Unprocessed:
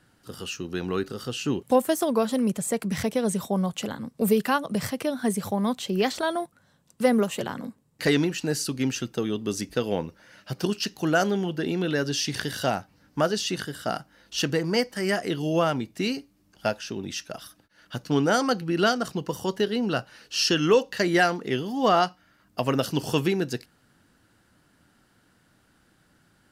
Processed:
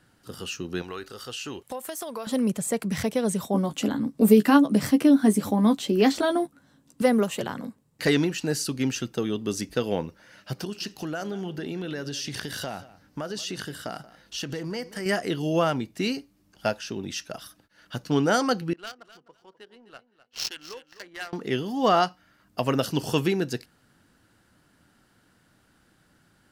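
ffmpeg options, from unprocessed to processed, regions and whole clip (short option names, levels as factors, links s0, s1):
-filter_complex "[0:a]asettb=1/sr,asplit=3[s0][s1][s2];[s0]atrim=end=0.824[s3];[s1]atrim=start=0.82:end=2.27,asetpts=PTS-STARTPTS,afade=t=in:d=0.004:c=qsin,afade=t=out:st=1.446:d=0.004:c=qsin,equalizer=f=180:w=0.53:g=-13.5,acompressor=threshold=0.0316:ratio=6:attack=3.2:release=140:knee=1:detection=peak[s4];[s2]atrim=start=2.266[s5];[s3][s4]acrossfade=d=0.004:c1=hsin:c2=qsin[s6];[s6][s5]acrossfade=d=0.004:c1=qsin:c2=hsin,asettb=1/sr,asplit=3[s7][s8][s9];[s7]atrim=end=3.544[s10];[s8]atrim=start=3.54:end=7.02,asetpts=PTS-STARTPTS,afade=t=in:d=0.004:c=qsin,afade=t=out:st=3.476:d=0.004:c=qsin,equalizer=f=280:t=o:w=0.45:g=14.5,asplit=2[s11][s12];[s12]adelay=14,volume=0.447[s13];[s11][s13]amix=inputs=2:normalize=0,atrim=end_sample=153468[s14];[s9]atrim=start=7.016[s15];[s10][s14]acrossfade=d=0.004:c1=hsin:c2=qsin[s16];[s16][s15]acrossfade=d=0.004:c1=qsin:c2=hsin,asettb=1/sr,asplit=3[s17][s18][s19];[s17]atrim=end=10.564[s20];[s18]atrim=start=10.56:end=15.06,asetpts=PTS-STARTPTS,afade=t=in:d=0.004:c=qsin,afade=t=out:st=4.496:d=0.004:c=qsin,acompressor=threshold=0.0355:ratio=5:attack=3.2:release=140:knee=1:detection=peak,aecho=1:1:181:0.126,atrim=end_sample=198450[s21];[s19]atrim=start=15.056[s22];[s20][s21]acrossfade=d=0.004:c1=hsin:c2=qsin[s23];[s23][s22]acrossfade=d=0.004:c1=qsin:c2=hsin,asettb=1/sr,asplit=3[s24][s25][s26];[s24]atrim=end=18.734[s27];[s25]atrim=start=18.73:end=21.33,asetpts=PTS-STARTPTS,afade=t=in:d=0.004:c=qsin,afade=t=out:st=2.596:d=0.004:c=qsin,aderivative,adynamicsmooth=sensitivity=4:basefreq=770,aecho=1:1:255|510:0.2|0.0339,atrim=end_sample=114660[s28];[s26]atrim=start=21.326[s29];[s27][s28]acrossfade=d=0.004:c1=hsin:c2=qsin[s30];[s30][s29]acrossfade=d=0.004:c1=qsin:c2=hsin"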